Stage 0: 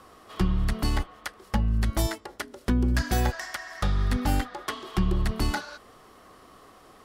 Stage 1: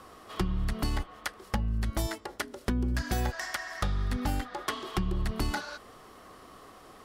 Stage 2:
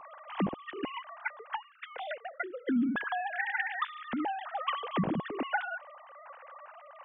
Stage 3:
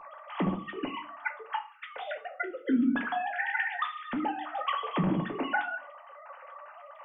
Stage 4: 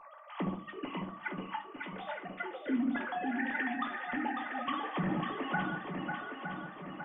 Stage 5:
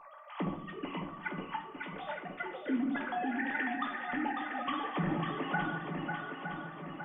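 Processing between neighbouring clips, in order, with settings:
compression 5:1, threshold -27 dBFS, peak gain reduction 8.5 dB; trim +1 dB
formants replaced by sine waves; trim -3.5 dB
reverberation RT60 0.40 s, pre-delay 3 ms, DRR 3 dB
shuffle delay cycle 913 ms, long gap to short 1.5:1, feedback 49%, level -5 dB; trim -6 dB
simulated room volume 440 m³, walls mixed, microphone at 0.39 m

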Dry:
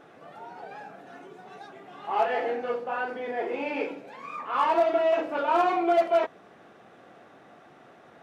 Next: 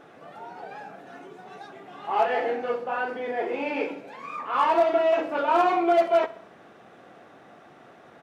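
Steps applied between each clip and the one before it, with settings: feedback delay 64 ms, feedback 53%, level -19 dB; trim +2 dB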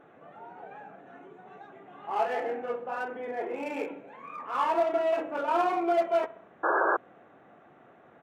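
local Wiener filter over 9 samples; painted sound noise, 6.63–6.97 s, 310–1700 Hz -20 dBFS; trim -5 dB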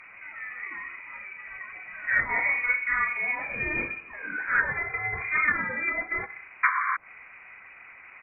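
time-frequency box 3.35–4.14 s, 350–860 Hz -15 dB; frequency inversion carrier 2.7 kHz; low-pass that closes with the level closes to 880 Hz, closed at -23 dBFS; trim +8 dB

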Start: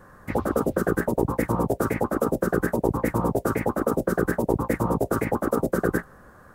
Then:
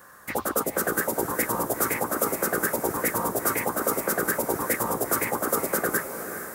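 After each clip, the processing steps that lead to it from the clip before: tilt EQ +4 dB/octave; on a send: echo that smears into a reverb 453 ms, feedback 55%, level -9 dB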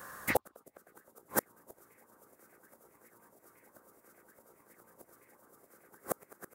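bouncing-ball echo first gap 590 ms, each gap 0.7×, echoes 5; inverted gate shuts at -15 dBFS, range -40 dB; trim +1.5 dB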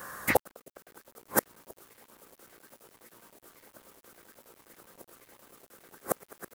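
bit crusher 10-bit; trim +5 dB

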